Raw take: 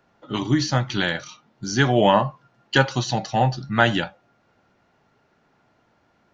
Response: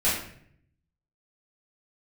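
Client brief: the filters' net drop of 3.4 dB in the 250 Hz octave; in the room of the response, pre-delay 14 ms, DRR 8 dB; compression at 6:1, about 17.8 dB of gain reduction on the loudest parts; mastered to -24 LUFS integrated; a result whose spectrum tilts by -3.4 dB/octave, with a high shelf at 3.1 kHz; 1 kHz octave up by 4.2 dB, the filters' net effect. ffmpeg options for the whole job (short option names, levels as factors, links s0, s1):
-filter_complex "[0:a]equalizer=f=250:t=o:g=-5,equalizer=f=1000:t=o:g=5,highshelf=f=3100:g=7.5,acompressor=threshold=0.0355:ratio=6,asplit=2[s0][s1];[1:a]atrim=start_sample=2205,adelay=14[s2];[s1][s2]afir=irnorm=-1:irlink=0,volume=0.0891[s3];[s0][s3]amix=inputs=2:normalize=0,volume=2.66"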